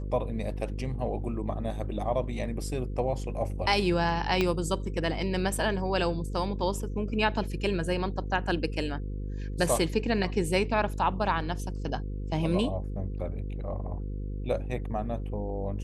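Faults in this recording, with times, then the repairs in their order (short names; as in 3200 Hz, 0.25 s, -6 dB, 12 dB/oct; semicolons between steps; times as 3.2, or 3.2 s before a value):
buzz 50 Hz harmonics 10 -34 dBFS
4.41 pop -13 dBFS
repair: de-click; de-hum 50 Hz, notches 10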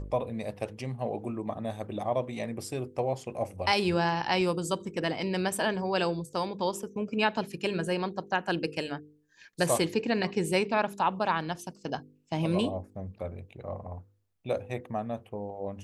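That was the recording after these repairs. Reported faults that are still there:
4.41 pop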